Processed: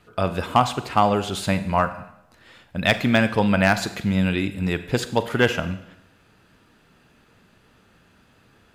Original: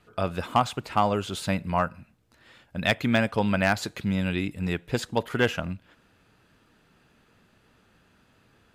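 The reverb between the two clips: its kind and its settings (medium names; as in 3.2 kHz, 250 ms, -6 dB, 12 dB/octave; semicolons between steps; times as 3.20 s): Schroeder reverb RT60 0.81 s, combs from 32 ms, DRR 11.5 dB; trim +4.5 dB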